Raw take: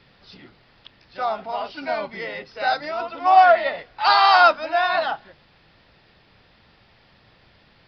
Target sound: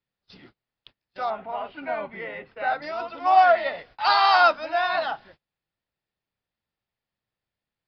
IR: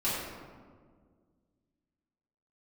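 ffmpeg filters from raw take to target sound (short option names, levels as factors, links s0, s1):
-filter_complex "[0:a]asettb=1/sr,asplit=3[s0][s1][s2];[s0]atrim=end=1.304[s3];[s1]atrim=start=1.3:end=2.82,asetpts=PTS-STARTPTS,afade=t=in:d=0.004:c=qsin,afade=t=out:st=1.516:d=0.004:c=qsin,lowpass=f=2800:w=0.5412,lowpass=f=2800:w=1.3066[s4];[s2]atrim=start=2.816[s5];[s3][s4]acrossfade=d=0.004:c1=hsin:c2=qsin[s6];[s6][s5]acrossfade=d=0.004:c1=qsin:c2=hsin,agate=range=0.0316:threshold=0.00501:ratio=16:detection=peak,volume=0.668"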